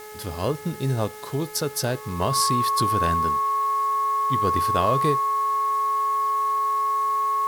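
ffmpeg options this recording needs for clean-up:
-af "bandreject=f=425.6:t=h:w=4,bandreject=f=851.2:t=h:w=4,bandreject=f=1276.8:t=h:w=4,bandreject=f=1702.4:t=h:w=4,bandreject=f=2128:t=h:w=4,bandreject=f=1100:w=30,afwtdn=0.005"

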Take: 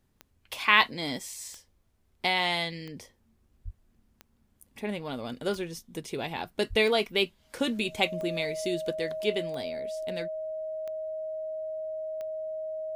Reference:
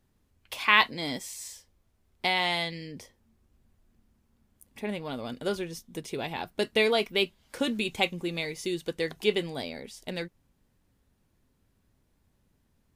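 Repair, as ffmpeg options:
-filter_complex "[0:a]adeclick=t=4,bandreject=f=630:w=30,asplit=3[s0][s1][s2];[s0]afade=t=out:st=3.64:d=0.02[s3];[s1]highpass=f=140:w=0.5412,highpass=f=140:w=1.3066,afade=t=in:st=3.64:d=0.02,afade=t=out:st=3.76:d=0.02[s4];[s2]afade=t=in:st=3.76:d=0.02[s5];[s3][s4][s5]amix=inputs=3:normalize=0,asplit=3[s6][s7][s8];[s6]afade=t=out:st=6.69:d=0.02[s9];[s7]highpass=f=140:w=0.5412,highpass=f=140:w=1.3066,afade=t=in:st=6.69:d=0.02,afade=t=out:st=6.81:d=0.02[s10];[s8]afade=t=in:st=6.81:d=0.02[s11];[s9][s10][s11]amix=inputs=3:normalize=0,asetnsamples=n=441:p=0,asendcmd='8.95 volume volume 3dB',volume=1"

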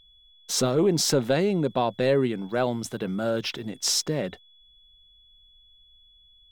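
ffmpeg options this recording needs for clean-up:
-af "bandreject=f=3400:w=30"

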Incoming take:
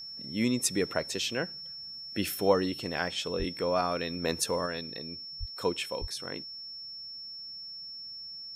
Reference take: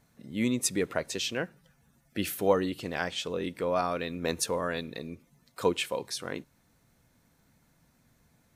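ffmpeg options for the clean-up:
-filter_complex "[0:a]bandreject=f=5400:w=30,asplit=3[s0][s1][s2];[s0]afade=t=out:st=3.38:d=0.02[s3];[s1]highpass=f=140:w=0.5412,highpass=f=140:w=1.3066,afade=t=in:st=3.38:d=0.02,afade=t=out:st=3.5:d=0.02[s4];[s2]afade=t=in:st=3.5:d=0.02[s5];[s3][s4][s5]amix=inputs=3:normalize=0,asplit=3[s6][s7][s8];[s6]afade=t=out:st=5.39:d=0.02[s9];[s7]highpass=f=140:w=0.5412,highpass=f=140:w=1.3066,afade=t=in:st=5.39:d=0.02,afade=t=out:st=5.51:d=0.02[s10];[s8]afade=t=in:st=5.51:d=0.02[s11];[s9][s10][s11]amix=inputs=3:normalize=0,asplit=3[s12][s13][s14];[s12]afade=t=out:st=6:d=0.02[s15];[s13]highpass=f=140:w=0.5412,highpass=f=140:w=1.3066,afade=t=in:st=6:d=0.02,afade=t=out:st=6.12:d=0.02[s16];[s14]afade=t=in:st=6.12:d=0.02[s17];[s15][s16][s17]amix=inputs=3:normalize=0,asetnsamples=n=441:p=0,asendcmd='4.66 volume volume 3.5dB',volume=1"

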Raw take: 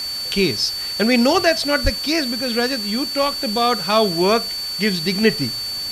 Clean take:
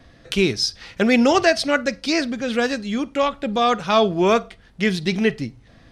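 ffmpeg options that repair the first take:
-filter_complex "[0:a]bandreject=f=4500:w=30,asplit=3[s0][s1][s2];[s0]afade=t=out:st=1.83:d=0.02[s3];[s1]highpass=f=140:w=0.5412,highpass=f=140:w=1.3066,afade=t=in:st=1.83:d=0.02,afade=t=out:st=1.95:d=0.02[s4];[s2]afade=t=in:st=1.95:d=0.02[s5];[s3][s4][s5]amix=inputs=3:normalize=0,afwtdn=0.018,asetnsamples=n=441:p=0,asendcmd='5.23 volume volume -3.5dB',volume=1"

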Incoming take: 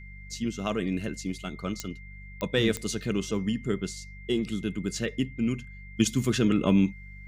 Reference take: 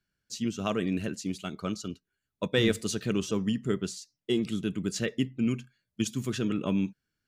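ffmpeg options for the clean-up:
-af "adeclick=t=4,bandreject=f=48.7:t=h:w=4,bandreject=f=97.4:t=h:w=4,bandreject=f=146.1:t=h:w=4,bandreject=f=194.8:t=h:w=4,bandreject=f=2100:w=30,asetnsamples=n=441:p=0,asendcmd='5.97 volume volume -6dB',volume=1"

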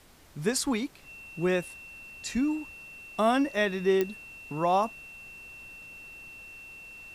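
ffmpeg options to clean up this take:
-af "adeclick=t=4,bandreject=f=2700:w=30,agate=range=0.0891:threshold=0.0112"

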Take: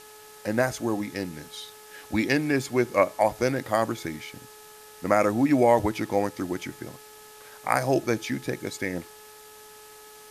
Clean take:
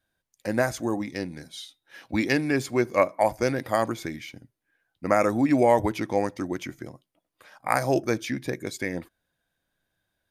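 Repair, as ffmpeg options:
-af "adeclick=t=4,bandreject=f=426.7:t=h:w=4,bandreject=f=853.4:t=h:w=4,bandreject=f=1280.1:t=h:w=4,bandreject=f=1706.8:t=h:w=4,afwtdn=0.0035"

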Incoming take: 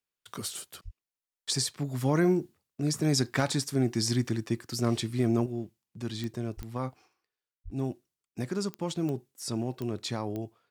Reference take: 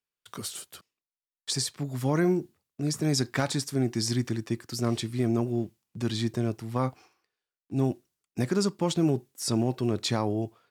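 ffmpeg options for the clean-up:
-filter_complex "[0:a]adeclick=t=4,asplit=3[s0][s1][s2];[s0]afade=t=out:st=0.84:d=0.02[s3];[s1]highpass=f=140:w=0.5412,highpass=f=140:w=1.3066,afade=t=in:st=0.84:d=0.02,afade=t=out:st=0.96:d=0.02[s4];[s2]afade=t=in:st=0.96:d=0.02[s5];[s3][s4][s5]amix=inputs=3:normalize=0,asplit=3[s6][s7][s8];[s6]afade=t=out:st=6.56:d=0.02[s9];[s7]highpass=f=140:w=0.5412,highpass=f=140:w=1.3066,afade=t=in:st=6.56:d=0.02,afade=t=out:st=6.68:d=0.02[s10];[s8]afade=t=in:st=6.68:d=0.02[s11];[s9][s10][s11]amix=inputs=3:normalize=0,asplit=3[s12][s13][s14];[s12]afade=t=out:st=7.64:d=0.02[s15];[s13]highpass=f=140:w=0.5412,highpass=f=140:w=1.3066,afade=t=in:st=7.64:d=0.02,afade=t=out:st=7.76:d=0.02[s16];[s14]afade=t=in:st=7.76:d=0.02[s17];[s15][s16][s17]amix=inputs=3:normalize=0,asetnsamples=n=441:p=0,asendcmd='5.46 volume volume 6dB',volume=1"

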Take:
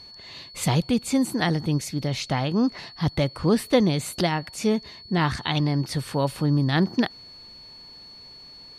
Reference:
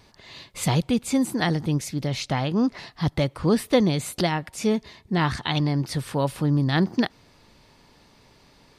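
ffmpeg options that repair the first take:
-af "bandreject=f=4400:w=30"

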